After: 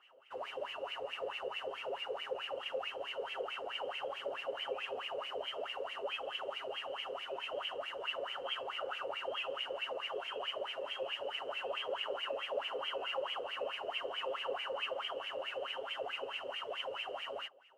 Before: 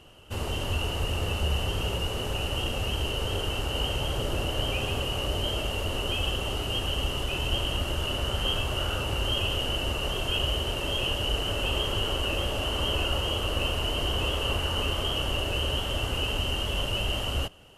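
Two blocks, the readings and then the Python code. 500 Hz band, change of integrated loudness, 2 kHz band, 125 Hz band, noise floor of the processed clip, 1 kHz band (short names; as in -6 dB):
-6.0 dB, -11.0 dB, -8.5 dB, under -40 dB, -47 dBFS, -6.0 dB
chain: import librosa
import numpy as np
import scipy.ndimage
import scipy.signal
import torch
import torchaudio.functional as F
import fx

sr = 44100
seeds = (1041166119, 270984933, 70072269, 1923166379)

y = fx.bass_treble(x, sr, bass_db=-12, treble_db=2)
y = y + 0.57 * np.pad(y, (int(7.4 * sr / 1000.0), 0))[:len(y)]
y = fx.wah_lfo(y, sr, hz=4.6, low_hz=470.0, high_hz=2400.0, q=8.1)
y = y * librosa.db_to_amplitude(4.0)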